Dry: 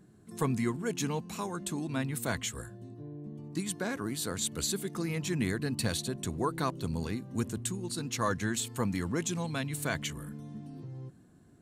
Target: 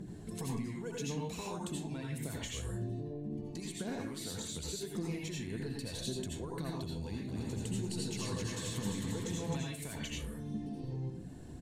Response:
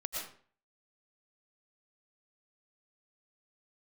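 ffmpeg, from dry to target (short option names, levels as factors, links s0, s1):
-filter_complex "[0:a]alimiter=level_in=1.12:limit=0.0631:level=0:latency=1:release=80,volume=0.891,acompressor=threshold=0.00398:ratio=16,highshelf=f=8400:g=-10.5,aphaser=in_gain=1:out_gain=1:delay=2.3:decay=0.41:speed=1.8:type=triangular,equalizer=f=1300:t=o:w=1.1:g=-10,asplit=3[s0][s1][s2];[s0]afade=t=out:st=7.27:d=0.02[s3];[s1]aecho=1:1:260|455|601.2|710.9|793.2:0.631|0.398|0.251|0.158|0.1,afade=t=in:st=7.27:d=0.02,afade=t=out:st=9.54:d=0.02[s4];[s2]afade=t=in:st=9.54:d=0.02[s5];[s3][s4][s5]amix=inputs=3:normalize=0[s6];[1:a]atrim=start_sample=2205,asetrate=61740,aresample=44100[s7];[s6][s7]afir=irnorm=-1:irlink=0,volume=5.96"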